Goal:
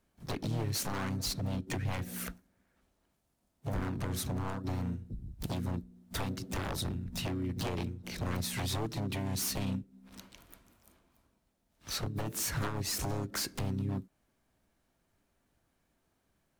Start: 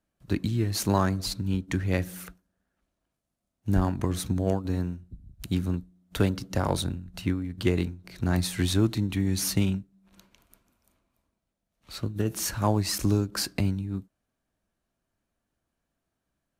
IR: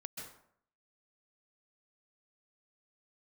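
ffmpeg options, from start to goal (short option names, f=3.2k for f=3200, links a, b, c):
-filter_complex "[0:a]acompressor=threshold=-36dB:ratio=4,aeval=exprs='0.0211*(abs(mod(val(0)/0.0211+3,4)-2)-1)':c=same,asplit=2[a][b];[b]asetrate=58866,aresample=44100,atempo=0.749154,volume=-5dB[c];[a][c]amix=inputs=2:normalize=0,volume=4.5dB"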